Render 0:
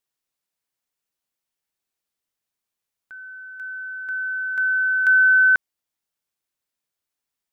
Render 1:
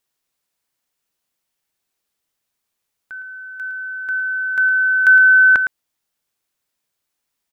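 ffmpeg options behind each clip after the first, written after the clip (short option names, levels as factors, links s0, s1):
-filter_complex "[0:a]asplit=2[s0][s1];[s1]adelay=110.8,volume=0.316,highshelf=f=4000:g=-2.49[s2];[s0][s2]amix=inputs=2:normalize=0,volume=2.24"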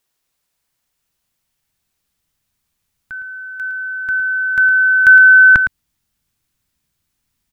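-af "asubboost=boost=7.5:cutoff=180,volume=1.68"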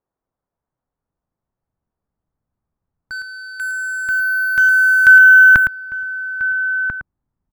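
-filter_complex "[0:a]acrossover=split=1200[s0][s1];[s1]acrusher=bits=4:mix=0:aa=0.5[s2];[s0][s2]amix=inputs=2:normalize=0,asplit=2[s3][s4];[s4]adelay=1341,volume=0.398,highshelf=f=4000:g=-30.2[s5];[s3][s5]amix=inputs=2:normalize=0"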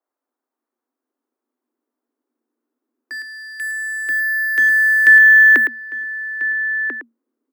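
-af "highshelf=f=9700:g=5,afreqshift=230,adynamicequalizer=threshold=0.0891:dfrequency=3200:dqfactor=0.7:tfrequency=3200:tqfactor=0.7:attack=5:release=100:ratio=0.375:range=2:mode=cutabove:tftype=highshelf,volume=0.841"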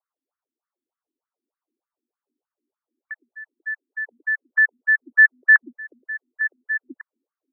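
-af "afftfilt=real='re*between(b*sr/1024,250*pow(1600/250,0.5+0.5*sin(2*PI*3.3*pts/sr))/1.41,250*pow(1600/250,0.5+0.5*sin(2*PI*3.3*pts/sr))*1.41)':imag='im*between(b*sr/1024,250*pow(1600/250,0.5+0.5*sin(2*PI*3.3*pts/sr))/1.41,250*pow(1600/250,0.5+0.5*sin(2*PI*3.3*pts/sr))*1.41)':win_size=1024:overlap=0.75,volume=0.891"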